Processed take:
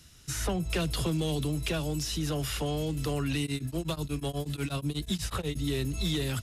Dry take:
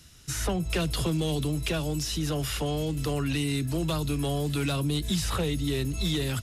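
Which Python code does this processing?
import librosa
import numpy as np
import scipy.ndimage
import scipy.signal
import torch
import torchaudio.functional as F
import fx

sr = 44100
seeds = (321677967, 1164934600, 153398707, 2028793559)

y = fx.tremolo_abs(x, sr, hz=8.2, at=(3.45, 5.55), fade=0.02)
y = F.gain(torch.from_numpy(y), -2.0).numpy()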